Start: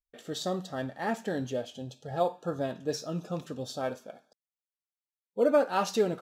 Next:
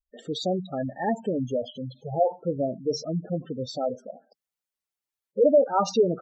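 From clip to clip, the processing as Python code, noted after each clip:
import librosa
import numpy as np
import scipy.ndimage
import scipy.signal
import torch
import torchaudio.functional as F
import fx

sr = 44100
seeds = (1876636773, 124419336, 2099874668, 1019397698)

y = fx.spec_gate(x, sr, threshold_db=-10, keep='strong')
y = y * librosa.db_to_amplitude(6.0)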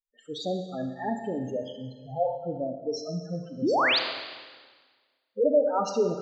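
y = fx.noise_reduce_blind(x, sr, reduce_db=21)
y = fx.spec_paint(y, sr, seeds[0], shape='rise', start_s=3.62, length_s=0.37, low_hz=230.0, high_hz=5100.0, level_db=-19.0)
y = fx.rev_schroeder(y, sr, rt60_s=1.5, comb_ms=27, drr_db=6.0)
y = y * librosa.db_to_amplitude(-4.5)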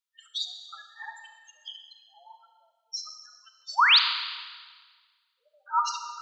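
y = scipy.signal.sosfilt(scipy.signal.cheby1(6, 6, 920.0, 'highpass', fs=sr, output='sos'), x)
y = y * librosa.db_to_amplitude(8.0)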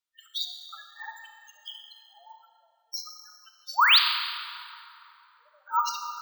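y = fx.rev_plate(x, sr, seeds[1], rt60_s=3.1, hf_ratio=0.6, predelay_ms=0, drr_db=10.5)
y = np.repeat(scipy.signal.resample_poly(y, 1, 2), 2)[:len(y)]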